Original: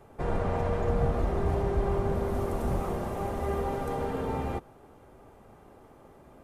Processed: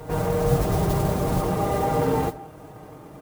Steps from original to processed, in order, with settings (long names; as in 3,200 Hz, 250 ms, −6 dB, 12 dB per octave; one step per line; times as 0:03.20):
tempo change 2×
low-shelf EQ 130 Hz +8.5 dB
noise that follows the level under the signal 24 dB
in parallel at −0.5 dB: downward compressor, threshold −29 dBFS, peak gain reduction 12 dB
on the sum: echo ahead of the sound 129 ms −15 dB
automatic gain control gain up to 3.5 dB
high-pass filter 84 Hz 12 dB per octave
comb filter 6.5 ms, depth 64%
on a send at −13.5 dB: high-frequency loss of the air 450 metres + convolution reverb RT60 0.40 s, pre-delay 60 ms